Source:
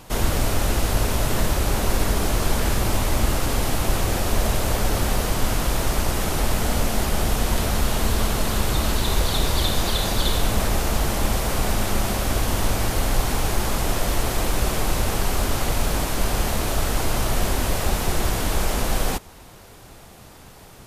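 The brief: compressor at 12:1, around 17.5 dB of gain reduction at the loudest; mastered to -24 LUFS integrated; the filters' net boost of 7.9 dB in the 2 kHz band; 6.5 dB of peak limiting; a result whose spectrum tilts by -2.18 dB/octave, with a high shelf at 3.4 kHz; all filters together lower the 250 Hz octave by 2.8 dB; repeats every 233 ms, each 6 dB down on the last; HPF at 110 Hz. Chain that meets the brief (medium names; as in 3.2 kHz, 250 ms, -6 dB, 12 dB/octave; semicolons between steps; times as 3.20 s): high-pass 110 Hz; peaking EQ 250 Hz -3.5 dB; peaking EQ 2 kHz +8 dB; treble shelf 3.4 kHz +6.5 dB; compression 12:1, threshold -34 dBFS; peak limiter -28 dBFS; feedback delay 233 ms, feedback 50%, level -6 dB; trim +11.5 dB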